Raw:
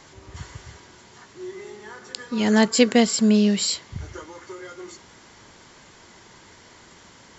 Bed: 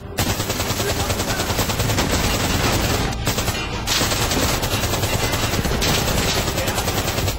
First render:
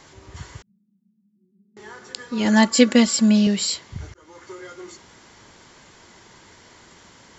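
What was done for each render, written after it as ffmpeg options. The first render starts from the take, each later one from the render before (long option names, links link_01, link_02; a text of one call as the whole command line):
ffmpeg -i in.wav -filter_complex "[0:a]asettb=1/sr,asplit=3[link_01][link_02][link_03];[link_01]atrim=end=0.624[link_04];[link_02]atrim=start=0.62:end=1.77,asetpts=PTS-STARTPTS,afade=type=in:duration=0.004:curve=qsin,afade=type=out:start_time=1.146:duration=0.004:curve=qsin,asuperpass=centerf=200:order=4:qfactor=6.5[link_05];[link_03]atrim=start=1.766[link_06];[link_04][link_05]acrossfade=duration=0.004:curve1=hsin:curve2=qsin[link_07];[link_07][link_06]acrossfade=duration=0.004:curve1=qsin:curve2=hsin,asettb=1/sr,asplit=3[link_08][link_09][link_10];[link_08]atrim=end=2.454[link_11];[link_09]atrim=start=2.45:end=3.47,asetpts=PTS-STARTPTS,afade=type=in:duration=0.004:curve=qsin,afade=type=out:start_time=1.016:duration=0.004:curve=qsin,aecho=1:1:3.5:0.73,atrim=end_sample=44982[link_12];[link_10]atrim=start=3.466[link_13];[link_11][link_12]acrossfade=duration=0.004:curve1=hsin:curve2=qsin[link_14];[link_14][link_13]acrossfade=duration=0.004:curve1=qsin:curve2=hsin,asplit=2[link_15][link_16];[link_15]atrim=end=4.14,asetpts=PTS-STARTPTS,afade=type=out:start_time=4.136:duration=0.004:curve=hsin[link_17];[link_16]atrim=start=4.14,asetpts=PTS-STARTPTS,afade=type=in:duration=0.45:curve=qsin[link_18];[link_17][link_18]concat=n=2:v=0:a=1" out.wav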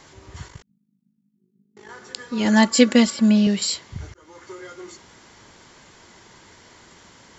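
ffmpeg -i in.wav -filter_complex "[0:a]asettb=1/sr,asplit=3[link_01][link_02][link_03];[link_01]atrim=end=0.484[link_04];[link_02]atrim=start=0.48:end=1.89,asetpts=PTS-STARTPTS,afade=type=in:duration=0.004:curve=qsin,afade=type=out:start_time=1.406:duration=0.004:curve=qsin,tremolo=f=51:d=0.75[link_05];[link_03]atrim=start=1.886[link_06];[link_04][link_05]acrossfade=duration=0.004:curve1=hsin:curve2=qsin[link_07];[link_07][link_06]acrossfade=duration=0.004:curve1=qsin:curve2=hsin,asettb=1/sr,asplit=3[link_08][link_09][link_10];[link_08]atrim=end=3.104[link_11];[link_09]atrim=start=3.1:end=3.62,asetpts=PTS-STARTPTS,afade=type=in:duration=0.004:curve=qsin,afade=type=out:start_time=0.516:duration=0.004:curve=qsin,acrossover=split=3500[link_12][link_13];[link_13]acompressor=threshold=-38dB:ratio=4:attack=1:release=60[link_14];[link_12][link_14]amix=inputs=2:normalize=0[link_15];[link_10]atrim=start=3.616[link_16];[link_11][link_15]acrossfade=duration=0.004:curve1=hsin:curve2=qsin[link_17];[link_17][link_16]acrossfade=duration=0.004:curve1=qsin:curve2=hsin" out.wav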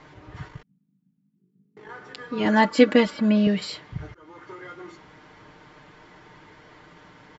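ffmpeg -i in.wav -af "lowpass=2500,aecho=1:1:6.6:0.59" out.wav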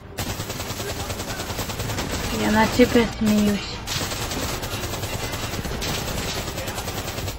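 ffmpeg -i in.wav -i bed.wav -filter_complex "[1:a]volume=-7.5dB[link_01];[0:a][link_01]amix=inputs=2:normalize=0" out.wav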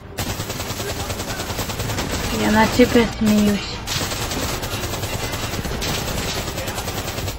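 ffmpeg -i in.wav -af "volume=3dB,alimiter=limit=-2dB:level=0:latency=1" out.wav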